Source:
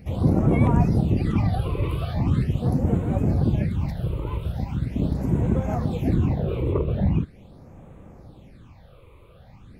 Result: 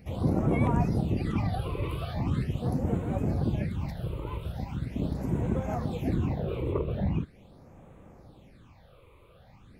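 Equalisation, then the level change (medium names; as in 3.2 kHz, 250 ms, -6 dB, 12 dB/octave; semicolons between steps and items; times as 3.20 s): bass shelf 310 Hz -5 dB; -3.0 dB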